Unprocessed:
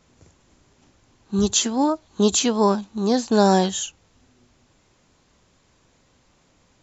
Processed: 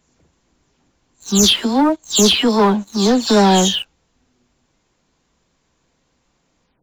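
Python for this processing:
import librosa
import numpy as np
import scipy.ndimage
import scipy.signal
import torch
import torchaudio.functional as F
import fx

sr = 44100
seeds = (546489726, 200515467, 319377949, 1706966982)

y = fx.spec_delay(x, sr, highs='early', ms=198)
y = fx.dynamic_eq(y, sr, hz=3200.0, q=1.7, threshold_db=-44.0, ratio=4.0, max_db=8)
y = fx.leveller(y, sr, passes=2)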